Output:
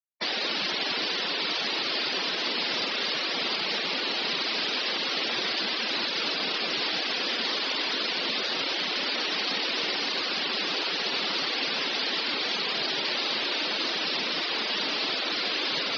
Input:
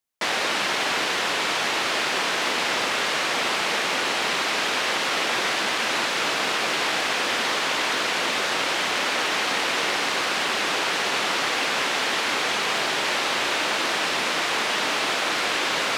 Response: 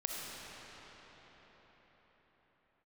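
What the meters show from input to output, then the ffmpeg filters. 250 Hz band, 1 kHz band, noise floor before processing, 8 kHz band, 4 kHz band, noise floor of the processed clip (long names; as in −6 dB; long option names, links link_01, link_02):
−3.0 dB, −9.5 dB, −25 dBFS, −15.0 dB, −1.0 dB, −30 dBFS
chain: -filter_complex "[0:a]acrossover=split=430|3000[link_01][link_02][link_03];[link_02]acompressor=threshold=-45dB:ratio=1.5[link_04];[link_01][link_04][link_03]amix=inputs=3:normalize=0,afftfilt=real='re*gte(hypot(re,im),0.0447)':imag='im*gte(hypot(re,im),0.0447)':win_size=1024:overlap=0.75,highshelf=frequency=6300:width_type=q:width=3:gain=-9,volume=-1.5dB"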